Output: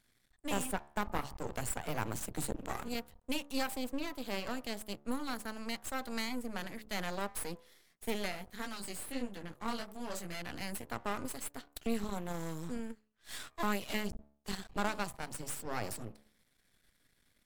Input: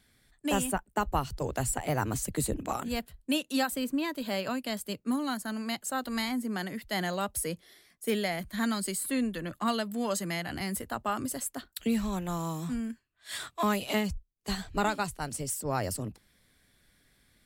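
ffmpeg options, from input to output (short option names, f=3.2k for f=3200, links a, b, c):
-filter_complex "[0:a]equalizer=f=71:w=1.5:g=-4,bandreject=f=71.82:t=h:w=4,bandreject=f=143.64:t=h:w=4,bandreject=f=215.46:t=h:w=4,bandreject=f=287.28:t=h:w=4,bandreject=f=359.1:t=h:w=4,bandreject=f=430.92:t=h:w=4,bandreject=f=502.74:t=h:w=4,bandreject=f=574.56:t=h:w=4,bandreject=f=646.38:t=h:w=4,bandreject=f=718.2:t=h:w=4,bandreject=f=790.02:t=h:w=4,bandreject=f=861.84:t=h:w=4,bandreject=f=933.66:t=h:w=4,bandreject=f=1.00548k:t=h:w=4,bandreject=f=1.0773k:t=h:w=4,bandreject=f=1.14912k:t=h:w=4,bandreject=f=1.22094k:t=h:w=4,asplit=3[a][b][c];[a]afade=t=out:st=8.31:d=0.02[d];[b]flanger=delay=15.5:depth=7:speed=1.5,afade=t=in:st=8.31:d=0.02,afade=t=out:st=10.39:d=0.02[e];[c]afade=t=in:st=10.39:d=0.02[f];[d][e][f]amix=inputs=3:normalize=0,aeval=exprs='max(val(0),0)':c=same,volume=-2.5dB" -ar 48000 -c:a libvorbis -b:a 192k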